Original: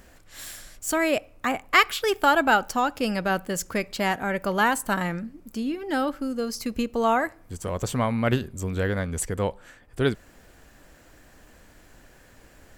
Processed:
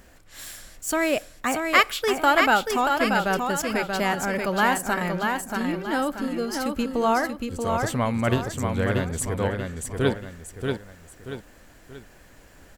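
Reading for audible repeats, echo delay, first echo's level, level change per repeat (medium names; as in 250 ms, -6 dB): 3, 633 ms, -4.5 dB, -8.0 dB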